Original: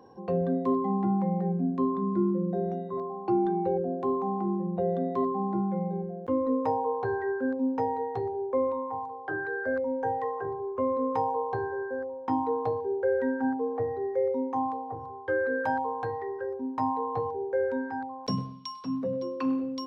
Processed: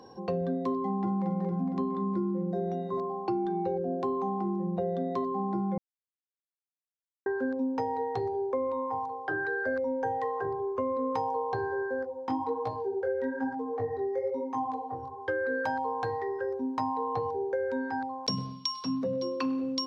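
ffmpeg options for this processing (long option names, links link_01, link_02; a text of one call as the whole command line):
ffmpeg -i in.wav -filter_complex "[0:a]asplit=2[link_01][link_02];[link_02]afade=type=in:start_time=0.82:duration=0.01,afade=type=out:start_time=1.26:duration=0.01,aecho=0:1:230|460|690|920|1150|1380|1610|1840|2070|2300:0.668344|0.434424|0.282375|0.183544|0.119304|0.0775473|0.0504058|0.0327637|0.0212964|0.0138427[link_03];[link_01][link_03]amix=inputs=2:normalize=0,asplit=3[link_04][link_05][link_06];[link_04]afade=type=out:start_time=12.03:duration=0.02[link_07];[link_05]flanger=delay=16:depth=7.2:speed=1.1,afade=type=in:start_time=12.03:duration=0.02,afade=type=out:start_time=15.2:duration=0.02[link_08];[link_06]afade=type=in:start_time=15.2:duration=0.02[link_09];[link_07][link_08][link_09]amix=inputs=3:normalize=0,asplit=3[link_10][link_11][link_12];[link_10]atrim=end=5.78,asetpts=PTS-STARTPTS,afade=type=out:start_time=5.776:duration=0.004:curve=hsin[link_13];[link_11]atrim=start=5.78:end=7.26,asetpts=PTS-STARTPTS,volume=0[link_14];[link_12]atrim=start=7.26,asetpts=PTS-STARTPTS,afade=type=in:duration=0.004:curve=hsin[link_15];[link_13][link_14][link_15]concat=n=3:v=0:a=1,equalizer=frequency=5100:width=0.8:gain=10,acompressor=threshold=-29dB:ratio=6,volume=2dB" out.wav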